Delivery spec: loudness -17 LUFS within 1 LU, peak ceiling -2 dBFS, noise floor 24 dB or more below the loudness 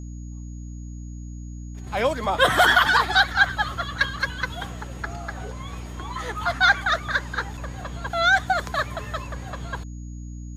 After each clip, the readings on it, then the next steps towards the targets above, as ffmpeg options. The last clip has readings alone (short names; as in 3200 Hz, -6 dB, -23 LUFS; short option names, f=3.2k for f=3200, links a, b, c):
hum 60 Hz; harmonics up to 300 Hz; hum level -33 dBFS; steady tone 6700 Hz; tone level -53 dBFS; loudness -22.5 LUFS; peak -5.0 dBFS; loudness target -17.0 LUFS
-> -af "bandreject=f=60:t=h:w=6,bandreject=f=120:t=h:w=6,bandreject=f=180:t=h:w=6,bandreject=f=240:t=h:w=6,bandreject=f=300:t=h:w=6"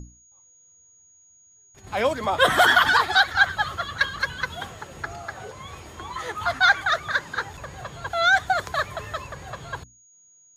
hum none; steady tone 6700 Hz; tone level -53 dBFS
-> -af "bandreject=f=6.7k:w=30"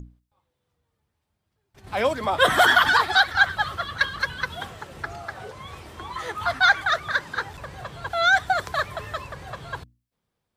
steady tone none; loudness -21.5 LUFS; peak -5.5 dBFS; loudness target -17.0 LUFS
-> -af "volume=4.5dB,alimiter=limit=-2dB:level=0:latency=1"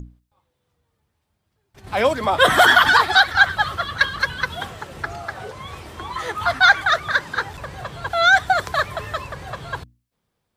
loudness -17.5 LUFS; peak -2.0 dBFS; noise floor -75 dBFS